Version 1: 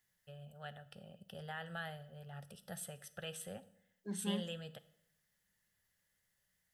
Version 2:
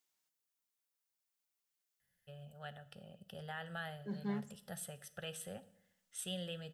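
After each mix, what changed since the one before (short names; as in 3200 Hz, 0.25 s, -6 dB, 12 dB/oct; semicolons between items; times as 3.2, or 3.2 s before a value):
first voice: entry +2.00 s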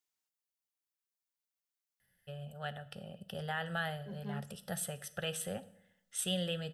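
first voice +7.5 dB; second voice -5.0 dB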